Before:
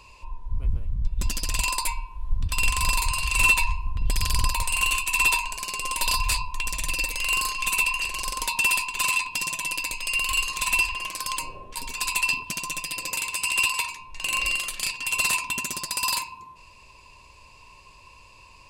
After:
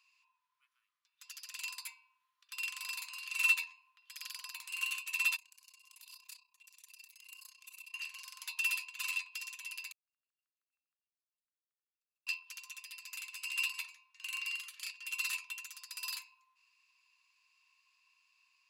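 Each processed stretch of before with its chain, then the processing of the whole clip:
0:05.36–0:07.94: parametric band 1,600 Hz −11.5 dB 2.9 octaves + amplitude modulation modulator 31 Hz, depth 70%
0:09.92–0:12.27: inverse Chebyshev low-pass filter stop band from 540 Hz, stop band 50 dB + square-wave tremolo 6.4 Hz, depth 65%, duty 45%
whole clip: Butterworth high-pass 1,200 Hz 48 dB per octave; parametric band 8,500 Hz −12.5 dB 0.2 octaves; expander for the loud parts 1.5 to 1, over −36 dBFS; level −8 dB

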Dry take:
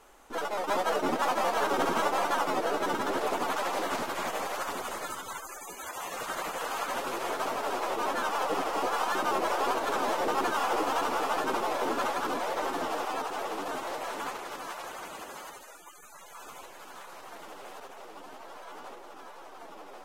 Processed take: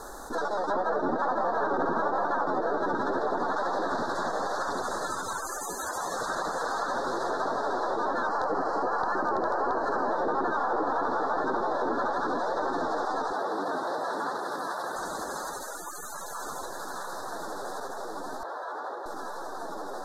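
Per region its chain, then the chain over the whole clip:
0:08.27–0:10.11: Butterworth band-reject 3,600 Hz, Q 5.4 + wrap-around overflow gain 18.5 dB
0:13.32–0:14.96: high-pass filter 130 Hz + parametric band 6,800 Hz −8 dB 0.79 octaves
0:18.43–0:19.06: high-pass filter 140 Hz + three-way crossover with the lows and the highs turned down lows −23 dB, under 340 Hz, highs −17 dB, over 3,600 Hz
whole clip: treble cut that deepens with the level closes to 2,200 Hz, closed at −24.5 dBFS; elliptic band-stop filter 1,700–3,800 Hz, stop band 40 dB; envelope flattener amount 50%

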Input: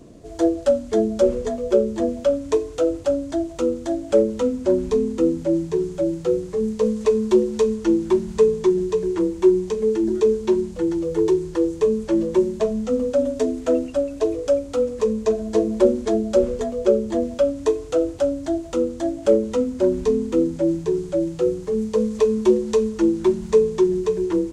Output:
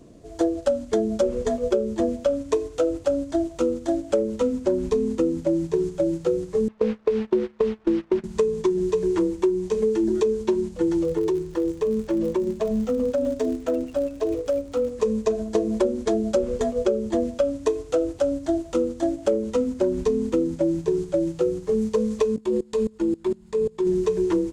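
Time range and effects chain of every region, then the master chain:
0:06.68–0:08.24: linear delta modulator 64 kbit/s, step −25 dBFS + low-pass filter 2,600 Hz + noise gate −22 dBFS, range −22 dB
0:11.02–0:14.89: downward compressor, threshold −21 dBFS + high-shelf EQ 4,800 Hz −5 dB + surface crackle 90 per second −35 dBFS
0:22.36–0:23.87: notch filter 5,900 Hz, Q 6.7 + output level in coarse steps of 23 dB
whole clip: noise gate −26 dBFS, range −7 dB; downward compressor 6 to 1, threshold −22 dBFS; level +3.5 dB

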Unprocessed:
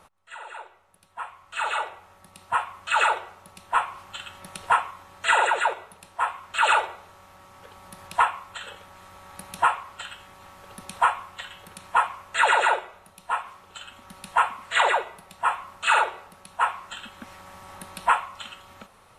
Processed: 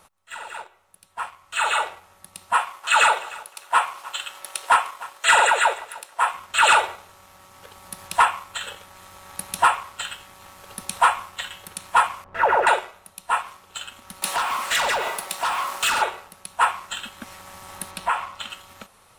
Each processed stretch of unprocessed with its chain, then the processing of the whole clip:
0:02.53–0:06.34: high-pass filter 410 Hz 24 dB per octave + repeating echo 304 ms, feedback 26%, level −20 dB
0:12.24–0:12.67: Gaussian smoothing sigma 4.2 samples + tilt shelving filter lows +7 dB, about 840 Hz
0:14.22–0:16.02: high-pass filter 360 Hz + downward compressor, threshold −32 dBFS + leveller curve on the samples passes 3
0:17.91–0:18.50: high-shelf EQ 6,200 Hz −10 dB + downward compressor 2 to 1, threshold −27 dBFS
whole clip: high-shelf EQ 3,700 Hz +9 dB; leveller curve on the samples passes 1

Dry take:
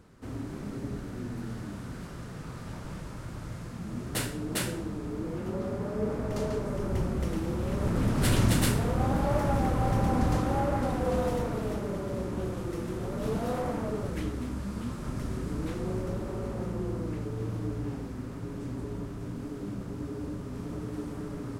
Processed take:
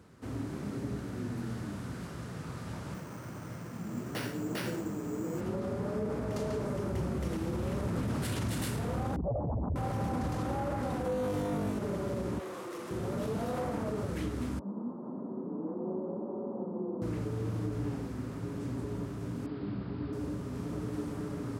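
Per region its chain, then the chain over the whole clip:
0:02.94–0:05.41: high-pass filter 130 Hz + bad sample-rate conversion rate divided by 6×, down filtered, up hold
0:09.16–0:09.76: expanding power law on the bin magnitudes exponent 2.9 + parametric band 950 Hz −12 dB 0.62 octaves + highs frequency-modulated by the lows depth 0.65 ms
0:11.05–0:11.79: notch filter 5,000 Hz, Q 15 + flutter between parallel walls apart 3.4 metres, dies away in 0.59 s
0:12.39–0:12.91: high-pass filter 380 Hz + parametric band 1,100 Hz +7 dB 0.22 octaves + hard clipping −37.5 dBFS
0:14.59–0:17.02: elliptic band-pass filter 200–980 Hz, stop band 50 dB + high-frequency loss of the air 300 metres
0:19.46–0:20.13: Butterworth low-pass 4,900 Hz 96 dB per octave + parametric band 520 Hz −4 dB 0.44 octaves
whole clip: high-pass filter 63 Hz 24 dB per octave; brickwall limiter −25.5 dBFS

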